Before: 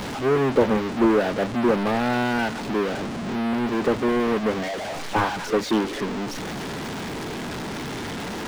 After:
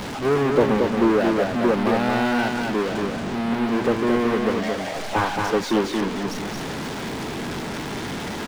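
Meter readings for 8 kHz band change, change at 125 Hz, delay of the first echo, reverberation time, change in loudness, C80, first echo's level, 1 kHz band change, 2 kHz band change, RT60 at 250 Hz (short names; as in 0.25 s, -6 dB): +1.5 dB, +1.5 dB, 0.226 s, none, +1.5 dB, none, -4.0 dB, +1.5 dB, +1.5 dB, none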